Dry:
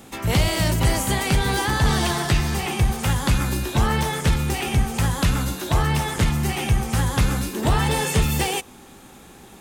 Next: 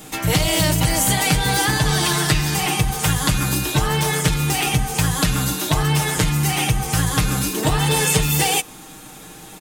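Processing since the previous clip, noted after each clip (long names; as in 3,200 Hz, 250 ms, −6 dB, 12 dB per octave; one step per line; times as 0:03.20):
downward compressor, threshold −19 dBFS, peak gain reduction 5.5 dB
high-shelf EQ 3,700 Hz +6.5 dB
comb filter 6.5 ms, depth 76%
level +2.5 dB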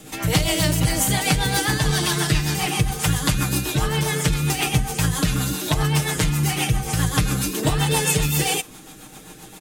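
rotating-speaker cabinet horn 7.5 Hz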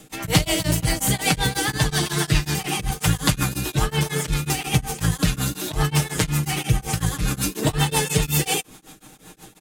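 in parallel at −4.5 dB: dead-zone distortion −30.5 dBFS
on the sum: tremolo along a rectified sine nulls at 5.5 Hz
level −1.5 dB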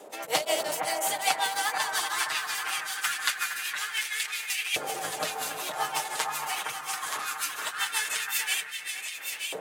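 wind on the microphone 380 Hz −33 dBFS
delay that swaps between a low-pass and a high-pass 463 ms, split 1,900 Hz, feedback 72%, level −4 dB
auto-filter high-pass saw up 0.21 Hz 550–2,400 Hz
level −7 dB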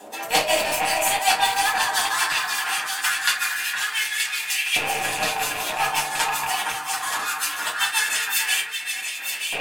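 loose part that buzzes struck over −50 dBFS, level −21 dBFS
convolution reverb RT60 0.30 s, pre-delay 4 ms, DRR −1 dB
level +2 dB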